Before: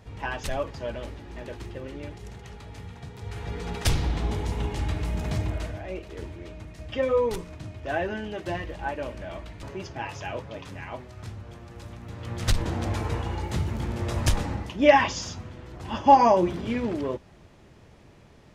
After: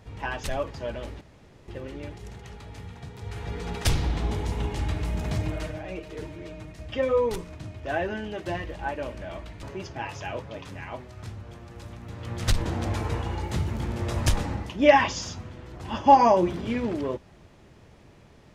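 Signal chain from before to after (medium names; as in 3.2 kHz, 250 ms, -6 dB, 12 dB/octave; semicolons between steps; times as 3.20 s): 1.21–1.68 s: room tone; 5.43–6.72 s: comb 6.5 ms, depth 60%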